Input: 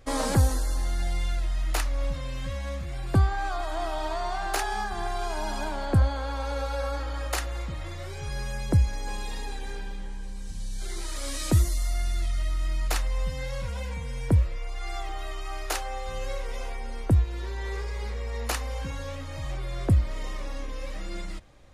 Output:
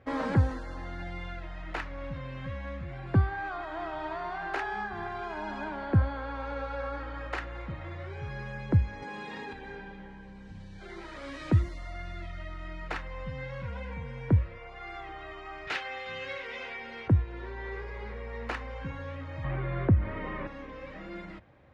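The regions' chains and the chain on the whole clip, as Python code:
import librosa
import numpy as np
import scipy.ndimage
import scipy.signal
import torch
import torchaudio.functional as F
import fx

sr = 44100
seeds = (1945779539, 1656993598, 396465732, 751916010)

y = fx.chain(x, sr, fx.highpass(hz=150.0, slope=12),
    fx.high_shelf(hz=9600.0, db=5.5),
    fx.env_flatten(amount_pct=100), at=(9.02, 9.53))
y = fx.chain(y, sr, fx.weighting(curve='D'),
    fx.overload_stage(gain_db=21.0), at=(15.67, 17.08))
y = fx.chain(y, sr, fx.lowpass(hz=2300.0, slope=12),
    fx.env_flatten(amount_pct=50), at=(19.44, 20.47))
y = scipy.signal.sosfilt(scipy.signal.cheby1(2, 1.0, [100.0, 1900.0], 'bandpass', fs=sr, output='sos'), y)
y = fx.notch(y, sr, hz=1200.0, q=17.0)
y = fx.dynamic_eq(y, sr, hz=690.0, q=1.5, threshold_db=-45.0, ratio=4.0, max_db=-5)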